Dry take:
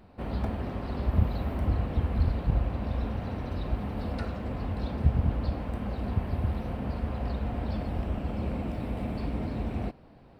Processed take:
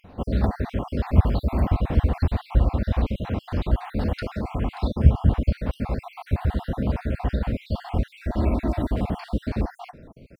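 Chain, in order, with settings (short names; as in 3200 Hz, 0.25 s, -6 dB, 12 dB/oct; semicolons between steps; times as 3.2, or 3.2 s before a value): random spectral dropouts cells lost 50%; 8.15–8.95 comb 3.1 ms, depth 57%; gain +9 dB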